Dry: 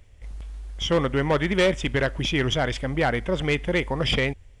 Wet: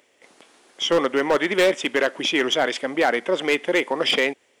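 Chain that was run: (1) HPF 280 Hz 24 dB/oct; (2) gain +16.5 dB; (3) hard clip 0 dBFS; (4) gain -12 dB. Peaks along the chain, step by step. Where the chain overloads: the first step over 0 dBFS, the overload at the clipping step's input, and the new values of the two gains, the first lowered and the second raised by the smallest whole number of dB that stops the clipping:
-8.5, +8.0, 0.0, -12.0 dBFS; step 2, 8.0 dB; step 2 +8.5 dB, step 4 -4 dB

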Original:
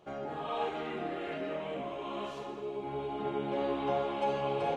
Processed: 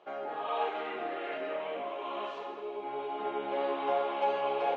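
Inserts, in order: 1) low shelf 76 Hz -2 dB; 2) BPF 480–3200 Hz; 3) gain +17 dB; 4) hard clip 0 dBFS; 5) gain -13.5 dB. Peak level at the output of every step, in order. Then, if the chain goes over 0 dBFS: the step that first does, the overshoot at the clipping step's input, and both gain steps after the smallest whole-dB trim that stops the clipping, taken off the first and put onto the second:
-19.0, -22.0, -5.0, -5.0, -18.5 dBFS; no overload

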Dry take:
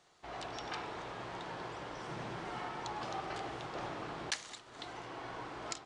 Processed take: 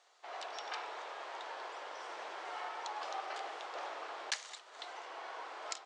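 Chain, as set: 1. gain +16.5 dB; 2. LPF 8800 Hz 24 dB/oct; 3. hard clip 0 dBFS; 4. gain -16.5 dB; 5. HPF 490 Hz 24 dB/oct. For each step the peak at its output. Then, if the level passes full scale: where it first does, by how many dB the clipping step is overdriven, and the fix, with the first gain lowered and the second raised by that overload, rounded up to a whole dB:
-3.0, -2.5, -2.5, -19.0, -19.5 dBFS; no overload

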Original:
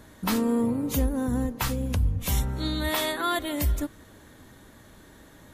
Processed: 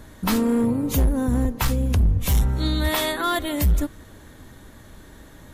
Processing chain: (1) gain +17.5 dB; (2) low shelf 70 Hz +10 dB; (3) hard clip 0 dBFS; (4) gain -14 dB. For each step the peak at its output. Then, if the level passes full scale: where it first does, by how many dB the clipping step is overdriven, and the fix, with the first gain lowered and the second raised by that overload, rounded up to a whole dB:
+3.0, +7.5, 0.0, -14.0 dBFS; step 1, 7.5 dB; step 1 +9.5 dB, step 4 -6 dB

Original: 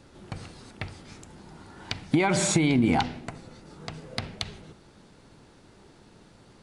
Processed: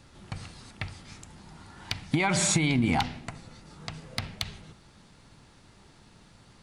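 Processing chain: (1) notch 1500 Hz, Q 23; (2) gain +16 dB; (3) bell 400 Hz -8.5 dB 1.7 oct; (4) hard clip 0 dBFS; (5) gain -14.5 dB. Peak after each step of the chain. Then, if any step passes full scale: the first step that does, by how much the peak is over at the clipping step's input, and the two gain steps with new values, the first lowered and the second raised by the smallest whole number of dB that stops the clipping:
-11.5, +4.5, +5.0, 0.0, -14.5 dBFS; step 2, 5.0 dB; step 2 +11 dB, step 5 -9.5 dB

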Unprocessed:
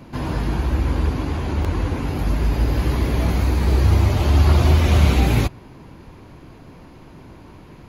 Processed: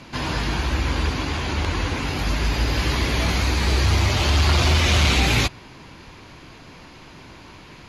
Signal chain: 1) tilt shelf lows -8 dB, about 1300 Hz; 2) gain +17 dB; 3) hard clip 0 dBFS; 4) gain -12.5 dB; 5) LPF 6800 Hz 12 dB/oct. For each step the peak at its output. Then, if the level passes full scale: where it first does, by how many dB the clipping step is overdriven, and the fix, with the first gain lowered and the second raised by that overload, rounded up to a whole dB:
-8.0, +9.0, 0.0, -12.5, -12.0 dBFS; step 2, 9.0 dB; step 2 +8 dB, step 4 -3.5 dB

